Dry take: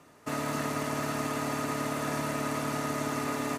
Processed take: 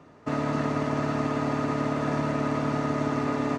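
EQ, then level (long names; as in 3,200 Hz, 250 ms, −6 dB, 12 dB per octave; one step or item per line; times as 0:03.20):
bass and treble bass +1 dB, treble +12 dB
head-to-tape spacing loss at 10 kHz 39 dB
+7.0 dB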